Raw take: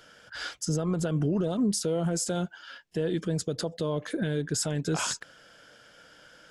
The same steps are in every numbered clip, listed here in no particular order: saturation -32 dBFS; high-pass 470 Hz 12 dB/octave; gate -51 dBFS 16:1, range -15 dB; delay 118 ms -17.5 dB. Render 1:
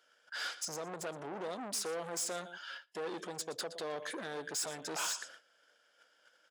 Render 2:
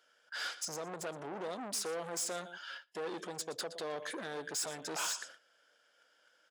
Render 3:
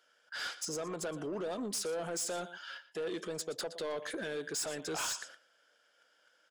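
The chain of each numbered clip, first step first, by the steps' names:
delay > gate > saturation > high-pass; delay > saturation > high-pass > gate; high-pass > gate > delay > saturation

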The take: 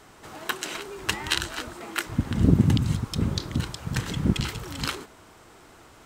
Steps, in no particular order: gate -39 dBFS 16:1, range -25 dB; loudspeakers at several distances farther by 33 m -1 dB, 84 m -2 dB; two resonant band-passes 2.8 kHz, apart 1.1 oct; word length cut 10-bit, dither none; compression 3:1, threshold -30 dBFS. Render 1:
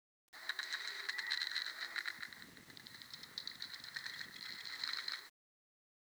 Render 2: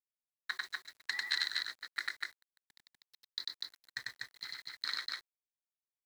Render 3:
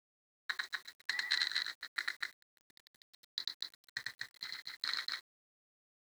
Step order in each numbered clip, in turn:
loudspeakers at several distances > gate > compression > two resonant band-passes > word length cut; two resonant band-passes > gate > compression > word length cut > loudspeakers at several distances; two resonant band-passes > gate > compression > loudspeakers at several distances > word length cut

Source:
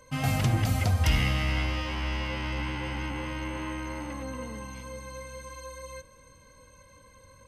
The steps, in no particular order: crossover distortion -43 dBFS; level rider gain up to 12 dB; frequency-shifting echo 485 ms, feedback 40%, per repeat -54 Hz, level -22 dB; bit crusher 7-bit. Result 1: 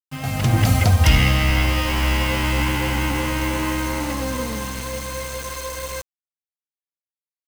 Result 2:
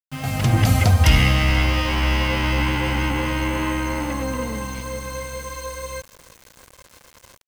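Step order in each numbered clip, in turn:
frequency-shifting echo > bit crusher > level rider > crossover distortion; level rider > frequency-shifting echo > crossover distortion > bit crusher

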